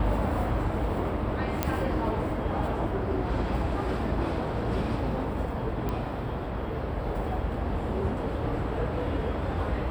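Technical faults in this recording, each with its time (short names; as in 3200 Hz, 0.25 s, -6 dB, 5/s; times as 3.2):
1.63 pop -10 dBFS
5.89 pop -19 dBFS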